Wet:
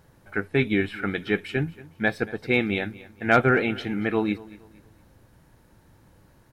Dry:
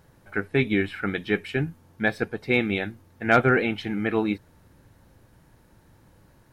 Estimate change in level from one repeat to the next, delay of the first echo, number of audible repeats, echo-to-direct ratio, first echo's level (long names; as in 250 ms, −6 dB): −9.5 dB, 231 ms, 2, −19.5 dB, −20.0 dB